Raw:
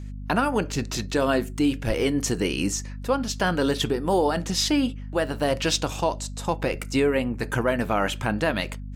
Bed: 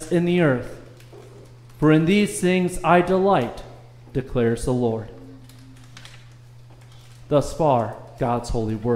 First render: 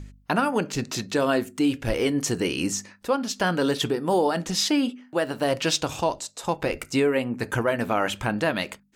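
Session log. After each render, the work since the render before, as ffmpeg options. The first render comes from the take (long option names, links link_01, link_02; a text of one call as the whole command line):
ffmpeg -i in.wav -af "bandreject=frequency=50:width_type=h:width=4,bandreject=frequency=100:width_type=h:width=4,bandreject=frequency=150:width_type=h:width=4,bandreject=frequency=200:width_type=h:width=4,bandreject=frequency=250:width_type=h:width=4" out.wav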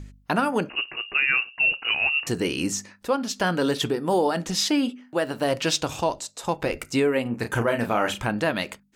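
ffmpeg -i in.wav -filter_complex "[0:a]asettb=1/sr,asplit=3[link_01][link_02][link_03];[link_01]atrim=end=0.694[link_04];[link_02]atrim=start=0.69:end=2.27,asetpts=PTS-STARTPTS,afade=type=in:duration=0.004:curve=qsin,afade=type=out:start_time=1.576:duration=0.004:curve=qsin,lowpass=frequency=2600:width_type=q:width=0.5098,lowpass=frequency=2600:width_type=q:width=0.6013,lowpass=frequency=2600:width_type=q:width=0.9,lowpass=frequency=2600:width_type=q:width=2.563,afreqshift=-3000[link_05];[link_03]atrim=start=2.266[link_06];[link_04][link_05]acrossfade=duration=0.004:curve1=hsin:curve2=qsin[link_07];[link_07][link_06]acrossfade=duration=0.004:curve1=qsin:curve2=hsin,asettb=1/sr,asplit=3[link_08][link_09][link_10];[link_08]atrim=end=7.224[link_11];[link_09]atrim=start=7.22:end=8.21,asetpts=PTS-STARTPTS,afade=type=in:duration=0.004:curve=qsin,afade=type=out:start_time=0.986:duration=0.004:curve=qsin,asplit=2[link_12][link_13];[link_13]adelay=34,volume=-7dB[link_14];[link_12][link_14]amix=inputs=2:normalize=0,atrim=end_sample=43659[link_15];[link_10]atrim=start=8.206[link_16];[link_11][link_15]acrossfade=duration=0.004:curve1=hsin:curve2=qsin[link_17];[link_17][link_16]acrossfade=duration=0.004:curve1=qsin:curve2=hsin" out.wav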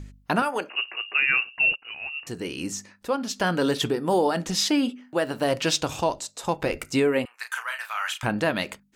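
ffmpeg -i in.wav -filter_complex "[0:a]asettb=1/sr,asplit=3[link_01][link_02][link_03];[link_01]atrim=end=0.424[link_04];[link_02]atrim=start=0.42:end=1.18,asetpts=PTS-STARTPTS,afade=type=in:duration=0.004:curve=qsin,afade=type=out:start_time=0.756:duration=0.004:curve=qsin,highpass=490[link_05];[link_03]atrim=start=1.176[link_06];[link_04][link_05]acrossfade=duration=0.004:curve1=hsin:curve2=qsin[link_07];[link_07][link_06]acrossfade=duration=0.004:curve1=qsin:curve2=hsin,asettb=1/sr,asplit=3[link_08][link_09][link_10];[link_08]atrim=end=7.254[link_11];[link_09]atrim=start=7.25:end=8.23,asetpts=PTS-STARTPTS,afade=type=in:duration=0.004:curve=qsin,afade=type=out:start_time=0.976:duration=0.004:curve=qsin,highpass=frequency=1200:width=0.5412,highpass=frequency=1200:width=1.3066[link_12];[link_10]atrim=start=8.226[link_13];[link_11][link_12]acrossfade=duration=0.004:curve1=hsin:curve2=qsin[link_14];[link_14][link_13]acrossfade=duration=0.004:curve1=qsin:curve2=hsin,asplit=2[link_15][link_16];[link_15]atrim=end=1.76,asetpts=PTS-STARTPTS,afade=type=out:start_time=1.756:duration=0.004:curve=hsin:silence=0.125893[link_17];[link_16]atrim=start=1.76,asetpts=PTS-STARTPTS,afade=type=in:duration=1.82:silence=0.125893[link_18];[link_17][link_18]concat=n=2:v=0:a=1" out.wav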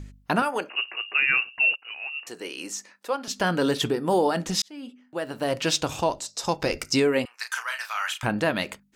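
ffmpeg -i in.wav -filter_complex "[0:a]asettb=1/sr,asplit=3[link_01][link_02][link_03];[link_01]atrim=end=1.604[link_04];[link_02]atrim=start=1.6:end=3.28,asetpts=PTS-STARTPTS,afade=type=in:duration=0.004:curve=qsin,afade=type=out:start_time=1.676:duration=0.004:curve=qsin,highpass=430[link_05];[link_03]atrim=start=3.276[link_06];[link_04][link_05]acrossfade=duration=0.004:curve1=hsin:curve2=qsin[link_07];[link_07][link_06]acrossfade=duration=0.004:curve1=qsin:curve2=hsin,asettb=1/sr,asplit=3[link_08][link_09][link_10];[link_08]atrim=end=6.274[link_11];[link_09]atrim=start=6.27:end=8.06,asetpts=PTS-STARTPTS,afade=type=in:duration=0.004:curve=qsin,afade=type=out:start_time=1.786:duration=0.004:curve=qsin,equalizer=frequency=5300:width=2.1:gain=12.5[link_12];[link_10]atrim=start=8.056[link_13];[link_11][link_12]acrossfade=duration=0.004:curve1=hsin:curve2=qsin[link_14];[link_14][link_13]acrossfade=duration=0.004:curve1=qsin:curve2=hsin,asplit=2[link_15][link_16];[link_15]atrim=end=4.62,asetpts=PTS-STARTPTS,afade=type=out:start_time=4.616:duration=0.004:curve=hsin[link_17];[link_16]atrim=start=4.62,asetpts=PTS-STARTPTS,afade=type=in:duration=1.14[link_18];[link_17][link_18]concat=n=2:v=0:a=1" out.wav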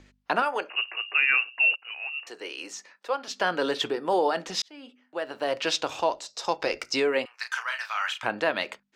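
ffmpeg -i in.wav -filter_complex "[0:a]acrossover=split=340 5700:gain=0.126 1 0.178[link_01][link_02][link_03];[link_01][link_02][link_03]amix=inputs=3:normalize=0" out.wav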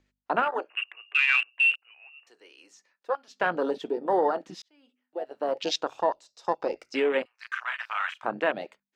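ffmpeg -i in.wav -af "afwtdn=0.0398" out.wav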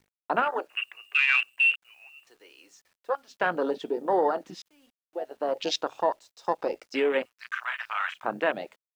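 ffmpeg -i in.wav -af "acrusher=bits=10:mix=0:aa=0.000001" out.wav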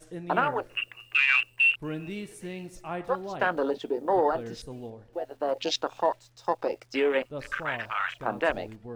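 ffmpeg -i in.wav -i bed.wav -filter_complex "[1:a]volume=-19dB[link_01];[0:a][link_01]amix=inputs=2:normalize=0" out.wav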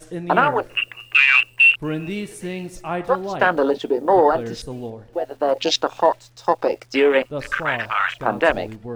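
ffmpeg -i in.wav -af "volume=9dB,alimiter=limit=-3dB:level=0:latency=1" out.wav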